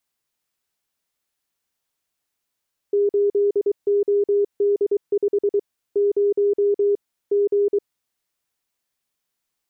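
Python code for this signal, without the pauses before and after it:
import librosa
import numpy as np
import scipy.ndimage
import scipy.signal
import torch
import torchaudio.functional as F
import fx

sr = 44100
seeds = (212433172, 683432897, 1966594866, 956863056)

y = fx.morse(sr, text='8OD5 0 G', wpm=23, hz=406.0, level_db=-15.0)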